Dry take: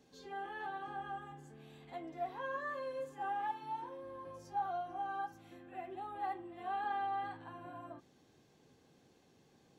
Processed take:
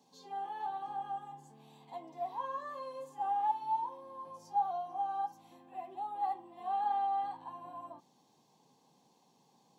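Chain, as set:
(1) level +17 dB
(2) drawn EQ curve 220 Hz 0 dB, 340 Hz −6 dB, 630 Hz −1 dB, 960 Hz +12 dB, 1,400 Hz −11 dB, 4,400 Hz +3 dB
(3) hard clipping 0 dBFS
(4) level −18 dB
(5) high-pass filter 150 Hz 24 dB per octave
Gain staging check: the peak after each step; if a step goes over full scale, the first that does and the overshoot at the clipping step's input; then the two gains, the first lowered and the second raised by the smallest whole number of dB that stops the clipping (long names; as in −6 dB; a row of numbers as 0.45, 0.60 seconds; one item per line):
−10.5, −4.0, −4.0, −22.0, −22.0 dBFS
no step passes full scale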